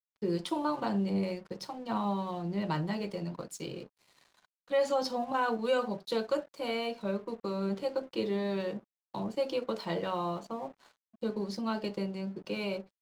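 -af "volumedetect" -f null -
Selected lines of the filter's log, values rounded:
mean_volume: -33.9 dB
max_volume: -18.5 dB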